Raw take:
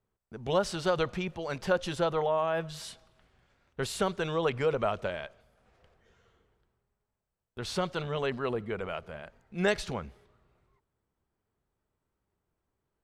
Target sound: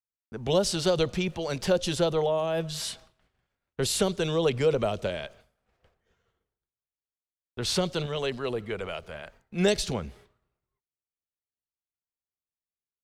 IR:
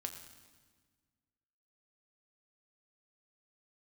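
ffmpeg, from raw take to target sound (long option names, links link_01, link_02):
-filter_complex "[0:a]acrossover=split=340|660|3200[link_01][link_02][link_03][link_04];[link_03]acompressor=threshold=-47dB:ratio=6[link_05];[link_01][link_02][link_05][link_04]amix=inputs=4:normalize=0,asettb=1/sr,asplit=3[link_06][link_07][link_08];[link_06]atrim=end=8.064[link_09];[link_07]atrim=start=8.06:end=9.4,asetpts=PTS-STARTPTS,afade=type=in:duration=0.004:curve=qsin,afade=type=out:start_time=1.336:duration=0.004:curve=qsin,equalizer=frequency=190:width_type=o:width=2.6:gain=-6[link_10];[link_08]atrim=start=9.396[link_11];[link_09][link_10]acrossfade=duration=0.004:curve1=hsin:curve2=qsin[link_12];[link_12][link_11]acrossfade=duration=0.004:curve1=qsin:curve2=hsin,agate=range=-33dB:threshold=-55dB:ratio=3:detection=peak,adynamicequalizer=threshold=0.00355:dfrequency=1600:dqfactor=0.7:tfrequency=1600:tqfactor=0.7:attack=5:release=100:ratio=0.375:range=2.5:mode=boostabove:tftype=highshelf,volume=5.5dB"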